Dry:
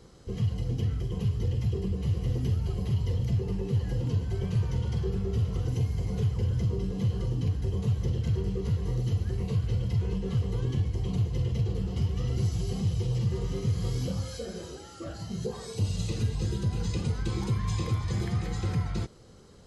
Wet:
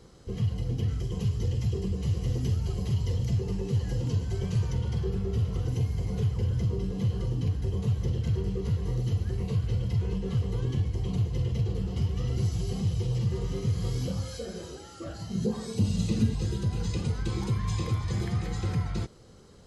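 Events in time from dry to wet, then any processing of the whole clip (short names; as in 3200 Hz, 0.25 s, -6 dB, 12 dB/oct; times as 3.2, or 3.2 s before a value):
0.88–4.73 bell 6800 Hz +6.5 dB 1.3 oct
15.35–16.34 bell 220 Hz +13 dB 0.67 oct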